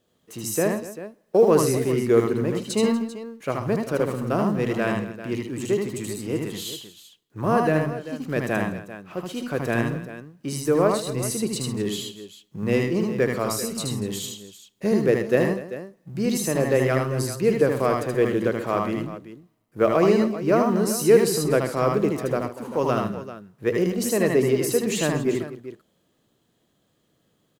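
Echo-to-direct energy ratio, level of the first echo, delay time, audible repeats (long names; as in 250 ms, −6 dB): −1.5 dB, −1.5 dB, 77 ms, 4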